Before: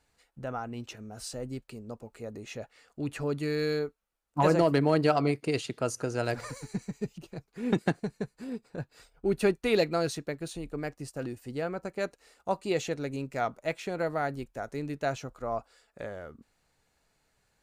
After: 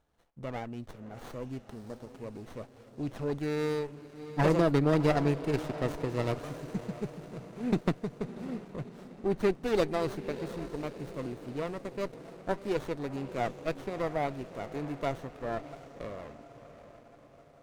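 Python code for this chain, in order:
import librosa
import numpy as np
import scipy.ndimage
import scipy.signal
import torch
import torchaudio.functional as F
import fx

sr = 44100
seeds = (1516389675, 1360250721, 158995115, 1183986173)

y = fx.echo_diffused(x, sr, ms=657, feedback_pct=54, wet_db=-13.0)
y = fx.running_max(y, sr, window=17)
y = y * librosa.db_to_amplitude(-1.5)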